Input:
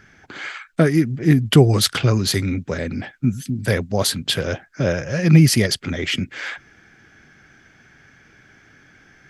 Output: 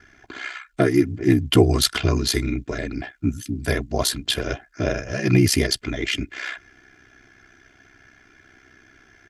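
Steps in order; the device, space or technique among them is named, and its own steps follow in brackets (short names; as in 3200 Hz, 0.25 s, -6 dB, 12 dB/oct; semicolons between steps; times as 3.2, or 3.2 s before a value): ring-modulated robot voice (ring modulator 32 Hz; comb 2.9 ms, depth 60%)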